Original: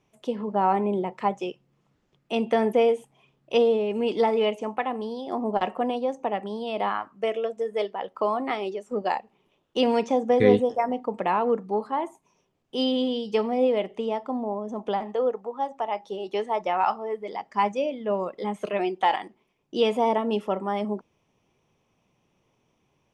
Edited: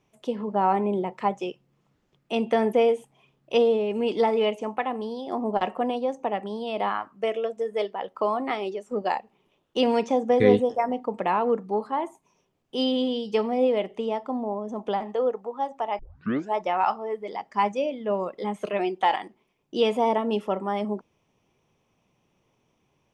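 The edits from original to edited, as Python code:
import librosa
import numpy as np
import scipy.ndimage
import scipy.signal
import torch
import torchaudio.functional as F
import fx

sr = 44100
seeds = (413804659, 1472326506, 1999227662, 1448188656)

y = fx.edit(x, sr, fx.tape_start(start_s=15.99, length_s=0.56), tone=tone)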